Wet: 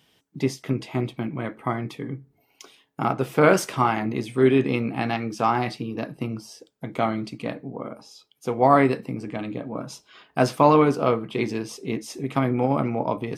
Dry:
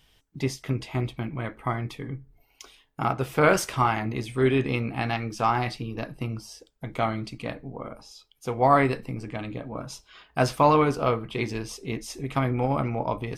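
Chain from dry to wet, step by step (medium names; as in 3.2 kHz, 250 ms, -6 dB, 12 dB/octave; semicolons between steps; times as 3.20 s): high-pass 160 Hz 12 dB/octave; peaking EQ 210 Hz +6 dB 3 oct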